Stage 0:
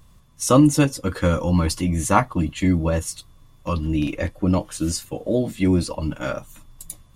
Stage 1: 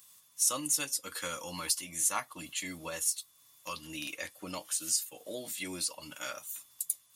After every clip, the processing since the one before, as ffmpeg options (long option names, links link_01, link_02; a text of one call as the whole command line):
ffmpeg -i in.wav -af "highpass=61,aderivative,acompressor=threshold=-47dB:ratio=1.5,volume=7dB" out.wav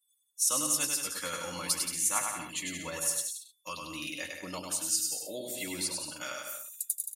ffmpeg -i in.wav -af "afftdn=noise_reduction=35:noise_floor=-54,aecho=1:1:100|175|231.2|273.4|305.1:0.631|0.398|0.251|0.158|0.1" out.wav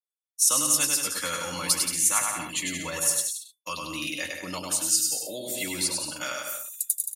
ffmpeg -i in.wav -filter_complex "[0:a]acrossover=split=160|980[link_01][link_02][link_03];[link_02]alimiter=level_in=13dB:limit=-24dB:level=0:latency=1,volume=-13dB[link_04];[link_01][link_04][link_03]amix=inputs=3:normalize=0,agate=range=-33dB:threshold=-50dB:ratio=3:detection=peak,volume=6.5dB" out.wav